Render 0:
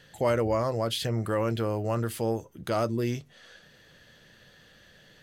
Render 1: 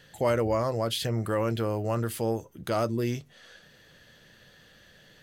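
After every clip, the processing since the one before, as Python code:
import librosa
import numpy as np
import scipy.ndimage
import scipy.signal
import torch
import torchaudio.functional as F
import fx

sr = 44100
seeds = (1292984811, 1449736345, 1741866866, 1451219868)

y = fx.high_shelf(x, sr, hz=12000.0, db=4.5)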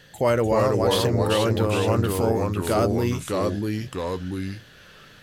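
y = fx.echo_pitch(x, sr, ms=280, semitones=-2, count=2, db_per_echo=-3.0)
y = y * 10.0 ** (4.5 / 20.0)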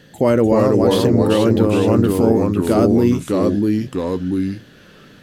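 y = fx.peak_eq(x, sr, hz=260.0, db=12.5, octaves=1.7)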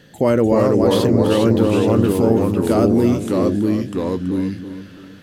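y = fx.echo_feedback(x, sr, ms=328, feedback_pct=35, wet_db=-11.5)
y = y * 10.0 ** (-1.0 / 20.0)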